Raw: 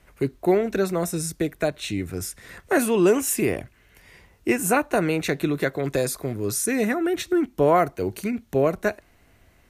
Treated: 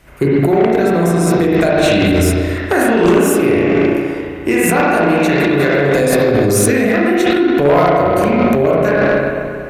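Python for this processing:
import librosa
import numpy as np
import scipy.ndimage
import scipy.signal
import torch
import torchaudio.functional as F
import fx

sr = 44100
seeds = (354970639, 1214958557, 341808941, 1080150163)

p1 = fx.echo_bbd(x, sr, ms=312, stages=4096, feedback_pct=51, wet_db=-15.0)
p2 = fx.rev_spring(p1, sr, rt60_s=1.8, pass_ms=(35, 58), chirp_ms=65, drr_db=-7.0)
p3 = fx.over_compress(p2, sr, threshold_db=-21.0, ratio=-0.5)
p4 = p2 + (p3 * 10.0 ** (1.5 / 20.0))
p5 = fx.cheby_harmonics(p4, sr, harmonics=(5, 7), levels_db=(-8, -13), full_scale_db=1.0)
y = p5 * 10.0 ** (-4.0 / 20.0)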